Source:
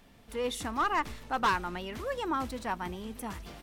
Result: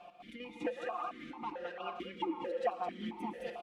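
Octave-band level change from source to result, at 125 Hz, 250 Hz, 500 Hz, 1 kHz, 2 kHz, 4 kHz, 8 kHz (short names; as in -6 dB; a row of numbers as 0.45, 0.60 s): -12.0 dB, -4.5 dB, -2.5 dB, -8.5 dB, -12.0 dB, -10.0 dB, under -20 dB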